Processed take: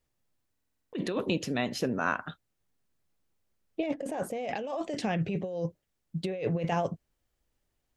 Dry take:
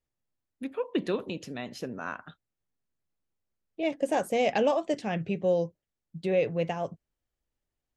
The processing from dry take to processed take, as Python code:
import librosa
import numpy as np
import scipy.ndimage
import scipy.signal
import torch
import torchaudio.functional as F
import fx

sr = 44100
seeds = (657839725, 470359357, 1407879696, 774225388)

y = fx.high_shelf(x, sr, hz=2700.0, db=-9.0, at=(3.86, 4.48))
y = fx.over_compress(y, sr, threshold_db=-33.0, ratio=-1.0)
y = fx.buffer_glitch(y, sr, at_s=(0.51,), block=2048, repeats=8)
y = y * 10.0 ** (2.5 / 20.0)